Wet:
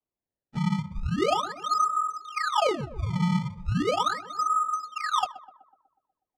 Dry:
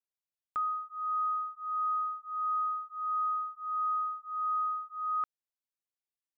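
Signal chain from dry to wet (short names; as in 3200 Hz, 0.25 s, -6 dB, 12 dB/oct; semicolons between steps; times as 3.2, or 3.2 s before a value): phase scrambler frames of 50 ms; dynamic EQ 1100 Hz, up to +8 dB, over -44 dBFS, Q 1.1; decimation with a swept rate 23×, swing 160% 0.38 Hz; air absorption 99 m; on a send: tape echo 0.124 s, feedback 68%, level -13 dB, low-pass 1000 Hz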